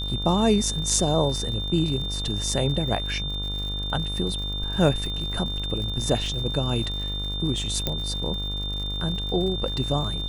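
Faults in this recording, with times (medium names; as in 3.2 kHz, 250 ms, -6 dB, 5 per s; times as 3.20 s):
buzz 50 Hz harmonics 30 -31 dBFS
crackle 100 per s -33 dBFS
whine 3.6 kHz -30 dBFS
7.87 s: pop -10 dBFS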